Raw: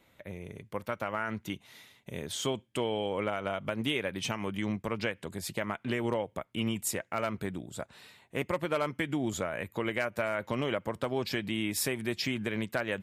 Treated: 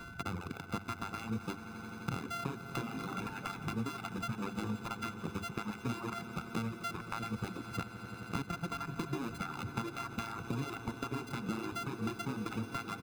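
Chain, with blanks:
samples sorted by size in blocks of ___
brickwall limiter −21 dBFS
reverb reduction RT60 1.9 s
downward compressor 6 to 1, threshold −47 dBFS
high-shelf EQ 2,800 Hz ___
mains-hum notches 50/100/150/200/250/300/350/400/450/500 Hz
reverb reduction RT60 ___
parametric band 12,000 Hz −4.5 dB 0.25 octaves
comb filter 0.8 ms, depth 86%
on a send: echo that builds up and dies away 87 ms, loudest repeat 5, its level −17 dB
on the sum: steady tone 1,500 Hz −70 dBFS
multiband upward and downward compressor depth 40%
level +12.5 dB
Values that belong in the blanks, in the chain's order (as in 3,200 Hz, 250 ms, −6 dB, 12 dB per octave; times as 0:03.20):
64 samples, −9.5 dB, 2 s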